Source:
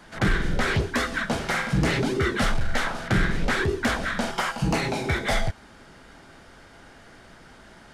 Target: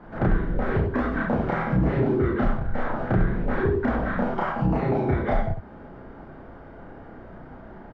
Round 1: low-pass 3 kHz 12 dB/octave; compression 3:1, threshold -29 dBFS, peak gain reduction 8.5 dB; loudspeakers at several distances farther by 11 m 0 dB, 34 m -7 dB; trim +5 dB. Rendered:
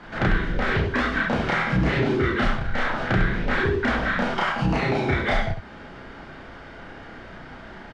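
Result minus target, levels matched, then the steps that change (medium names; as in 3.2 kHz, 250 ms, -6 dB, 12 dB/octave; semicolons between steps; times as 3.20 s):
4 kHz band +15.5 dB
change: low-pass 920 Hz 12 dB/octave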